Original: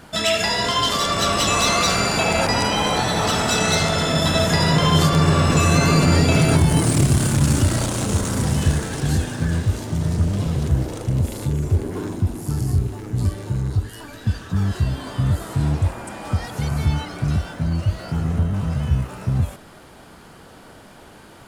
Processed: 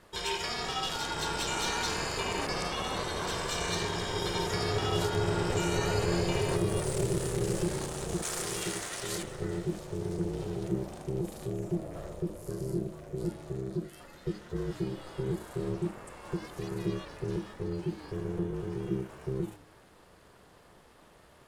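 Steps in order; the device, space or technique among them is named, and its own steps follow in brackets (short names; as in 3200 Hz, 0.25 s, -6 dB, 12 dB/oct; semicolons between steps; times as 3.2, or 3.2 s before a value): alien voice (ring modulator 260 Hz; flange 1.3 Hz, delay 9 ms, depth 6.6 ms, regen -87%); 8.22–9.23 tilt shelf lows -9 dB, about 660 Hz; gain -6 dB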